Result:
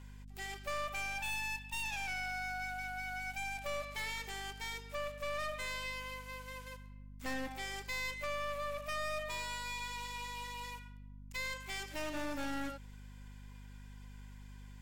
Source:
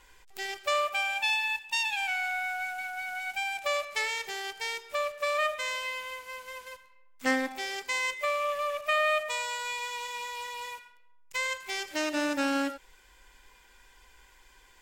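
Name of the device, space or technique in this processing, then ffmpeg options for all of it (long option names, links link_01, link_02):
valve amplifier with mains hum: -af "aeval=exprs='(tanh(44.7*val(0)+0.5)-tanh(0.5))/44.7':channel_layout=same,aeval=exprs='val(0)+0.00447*(sin(2*PI*50*n/s)+sin(2*PI*2*50*n/s)/2+sin(2*PI*3*50*n/s)/3+sin(2*PI*4*50*n/s)/4+sin(2*PI*5*50*n/s)/5)':channel_layout=same,volume=-3dB"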